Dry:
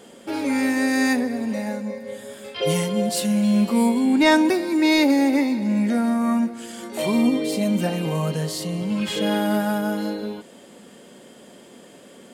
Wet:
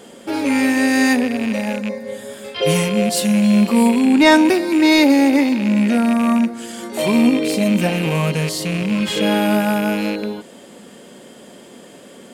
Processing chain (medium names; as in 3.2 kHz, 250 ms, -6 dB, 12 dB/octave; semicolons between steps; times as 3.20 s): rattle on loud lows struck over -30 dBFS, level -22 dBFS; trim +5 dB